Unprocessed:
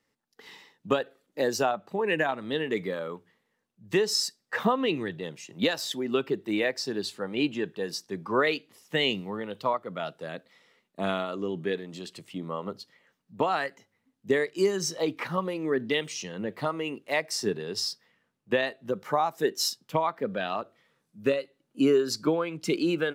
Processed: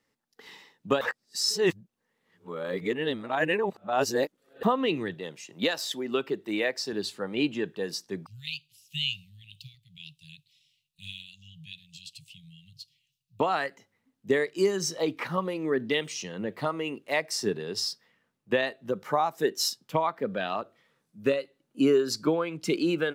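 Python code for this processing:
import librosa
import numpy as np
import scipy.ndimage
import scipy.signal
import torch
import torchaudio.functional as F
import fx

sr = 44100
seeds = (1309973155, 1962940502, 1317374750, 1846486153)

y = fx.low_shelf(x, sr, hz=200.0, db=-8.0, at=(5.14, 6.93))
y = fx.cheby1_bandstop(y, sr, low_hz=150.0, high_hz=2600.0, order=5, at=(8.26, 13.4))
y = fx.edit(y, sr, fx.reverse_span(start_s=1.01, length_s=3.62), tone=tone)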